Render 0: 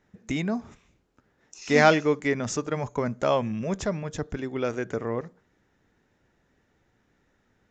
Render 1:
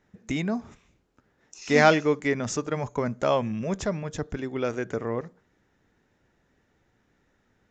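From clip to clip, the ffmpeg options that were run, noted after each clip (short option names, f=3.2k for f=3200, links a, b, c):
-af anull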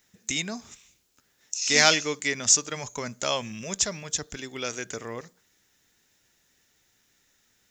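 -filter_complex "[0:a]acrossover=split=2600[a][b];[b]acontrast=85[c];[a][c]amix=inputs=2:normalize=0,crystalizer=i=8:c=0,volume=-8.5dB"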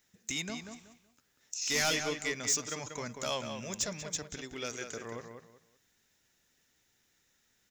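-filter_complex "[0:a]asoftclip=type=tanh:threshold=-18dB,asplit=2[a][b];[b]adelay=188,lowpass=f=3k:p=1,volume=-6.5dB,asplit=2[c][d];[d]adelay=188,lowpass=f=3k:p=1,volume=0.26,asplit=2[e][f];[f]adelay=188,lowpass=f=3k:p=1,volume=0.26[g];[a][c][e][g]amix=inputs=4:normalize=0,volume=-6dB"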